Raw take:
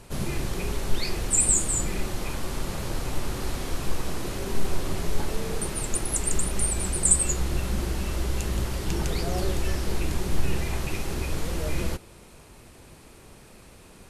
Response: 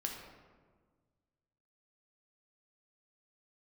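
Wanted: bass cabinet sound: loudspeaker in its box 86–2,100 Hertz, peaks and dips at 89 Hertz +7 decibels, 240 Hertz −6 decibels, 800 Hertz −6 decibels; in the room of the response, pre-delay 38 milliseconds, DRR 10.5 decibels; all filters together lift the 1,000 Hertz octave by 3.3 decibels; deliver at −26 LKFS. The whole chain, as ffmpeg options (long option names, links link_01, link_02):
-filter_complex "[0:a]equalizer=frequency=1000:width_type=o:gain=7,asplit=2[link_01][link_02];[1:a]atrim=start_sample=2205,adelay=38[link_03];[link_02][link_03]afir=irnorm=-1:irlink=0,volume=-11dB[link_04];[link_01][link_04]amix=inputs=2:normalize=0,highpass=frequency=86:width=0.5412,highpass=frequency=86:width=1.3066,equalizer=frequency=89:width_type=q:width=4:gain=7,equalizer=frequency=240:width_type=q:width=4:gain=-6,equalizer=frequency=800:width_type=q:width=4:gain=-6,lowpass=frequency=2100:width=0.5412,lowpass=frequency=2100:width=1.3066,volume=7dB"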